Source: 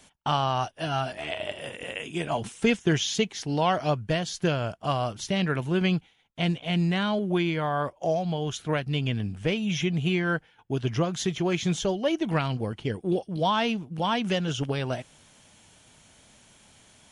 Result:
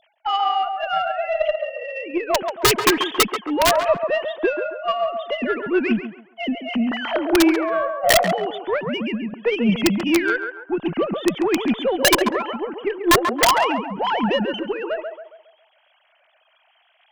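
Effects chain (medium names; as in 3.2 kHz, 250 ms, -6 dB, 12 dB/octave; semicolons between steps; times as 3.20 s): formants replaced by sine waves; Chebyshev shaper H 6 -34 dB, 7 -28 dB, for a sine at -9.5 dBFS; integer overflow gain 15 dB; on a send: band-passed feedback delay 137 ms, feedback 45%, band-pass 830 Hz, level -5 dB; on the sum: trim +7 dB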